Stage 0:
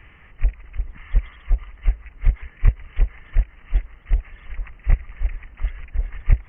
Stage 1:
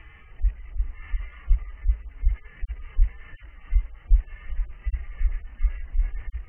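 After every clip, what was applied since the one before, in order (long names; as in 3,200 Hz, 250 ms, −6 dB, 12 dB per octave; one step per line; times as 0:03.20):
harmonic-percussive split with one part muted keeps harmonic
level +2 dB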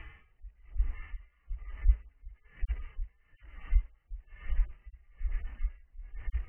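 tremolo with a sine in dB 1.1 Hz, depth 26 dB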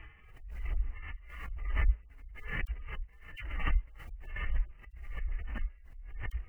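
background raised ahead of every attack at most 53 dB per second
level −4 dB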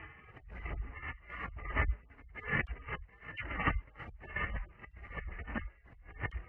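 band-pass filter 110–2,100 Hz
level +7.5 dB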